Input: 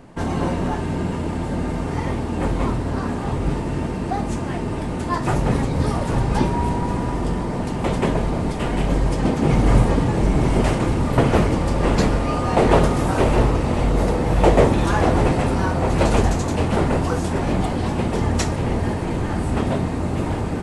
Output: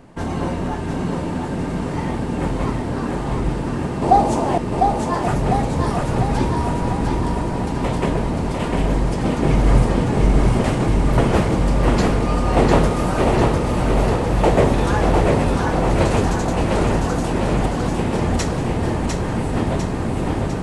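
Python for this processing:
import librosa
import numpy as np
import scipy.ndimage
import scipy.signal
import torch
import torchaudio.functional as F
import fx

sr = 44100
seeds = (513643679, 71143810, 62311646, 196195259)

y = fx.curve_eq(x, sr, hz=(150.0, 810.0, 1600.0, 4200.0), db=(0, 15, 0, 6), at=(4.02, 4.58))
y = fx.echo_feedback(y, sr, ms=701, feedback_pct=55, wet_db=-4)
y = F.gain(torch.from_numpy(y), -1.0).numpy()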